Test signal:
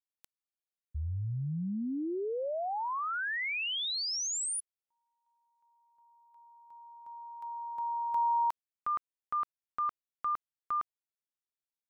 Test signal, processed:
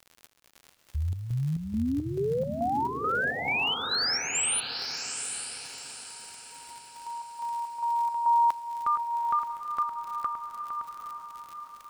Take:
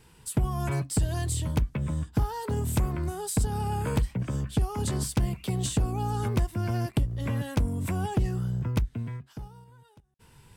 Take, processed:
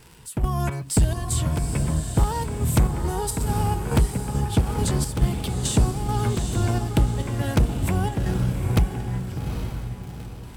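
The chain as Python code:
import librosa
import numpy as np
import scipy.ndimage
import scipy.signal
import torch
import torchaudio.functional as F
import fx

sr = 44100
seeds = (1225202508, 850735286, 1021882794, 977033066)

p1 = fx.level_steps(x, sr, step_db=24)
p2 = x + (p1 * librosa.db_to_amplitude(-2.0))
p3 = fx.dmg_crackle(p2, sr, seeds[0], per_s=110.0, level_db=-41.0)
p4 = np.clip(10.0 ** (18.0 / 20.0) * p3, -1.0, 1.0) / 10.0 ** (18.0 / 20.0)
p5 = fx.chopper(p4, sr, hz=2.3, depth_pct=60, duty_pct=60)
p6 = p5 + fx.echo_diffused(p5, sr, ms=822, feedback_pct=40, wet_db=-6, dry=0)
y = p6 * librosa.db_to_amplitude(5.0)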